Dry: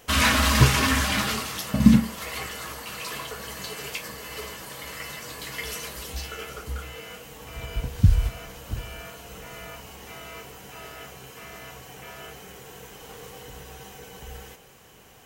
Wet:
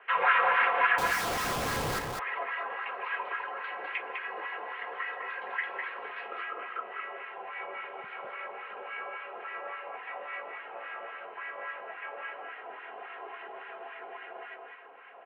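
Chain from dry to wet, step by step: LFO band-pass sine 3.6 Hz 720–2000 Hz; in parallel at +0.5 dB: compressor, threshold -46 dBFS, peak gain reduction 20.5 dB; on the sum: comb 3.5 ms, depth 62%; mistuned SSB -95 Hz 470–2900 Hz; 0.98–1.99 Schmitt trigger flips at -41 dBFS; on a send: echo 0.203 s -4.5 dB; on the sum: gain +1.5 dB

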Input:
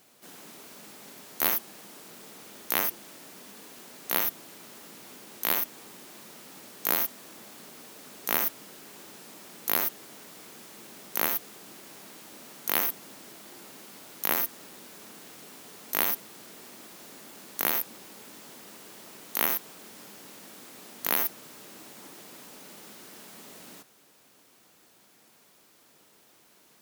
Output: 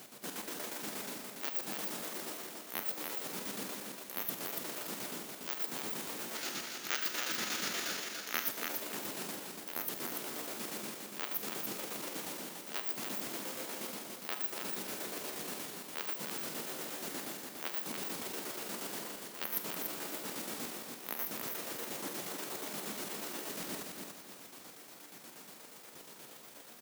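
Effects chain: trilling pitch shifter +7 st, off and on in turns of 0.405 s; HPF 130 Hz; low shelf 240 Hz +4 dB; reverse; compressor 5:1, threshold -44 dBFS, peak gain reduction 21.5 dB; reverse; spectral gain 6.36–8.47, 1200–7200 Hz +9 dB; chopper 8.4 Hz, depth 60%, duty 50%; feedback echo 0.288 s, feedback 35%, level -4.5 dB; on a send at -10.5 dB: reverb RT60 0.40 s, pre-delay 30 ms; on the sum: gain +8.5 dB

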